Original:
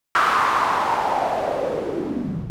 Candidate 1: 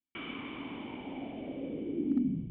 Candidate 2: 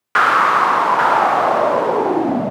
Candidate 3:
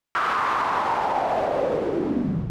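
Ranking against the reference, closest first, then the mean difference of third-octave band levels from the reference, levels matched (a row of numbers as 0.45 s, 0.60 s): 3, 2, 1; 3.0 dB, 4.5 dB, 10.5 dB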